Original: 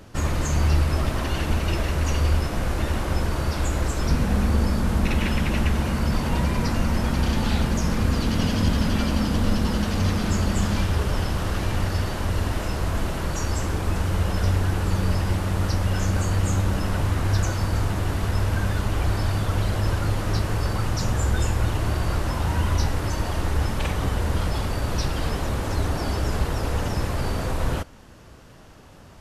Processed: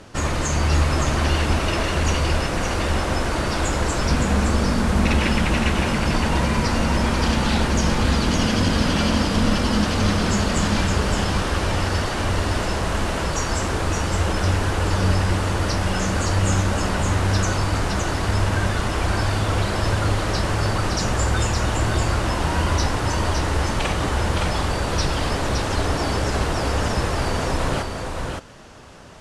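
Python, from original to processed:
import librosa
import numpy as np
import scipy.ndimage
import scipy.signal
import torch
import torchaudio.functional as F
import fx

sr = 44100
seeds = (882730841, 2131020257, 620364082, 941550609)

p1 = scipy.signal.sosfilt(scipy.signal.butter(4, 10000.0, 'lowpass', fs=sr, output='sos'), x)
p2 = fx.low_shelf(p1, sr, hz=230.0, db=-7.0)
p3 = p2 + fx.echo_single(p2, sr, ms=565, db=-4.5, dry=0)
y = p3 * librosa.db_to_amplitude(5.5)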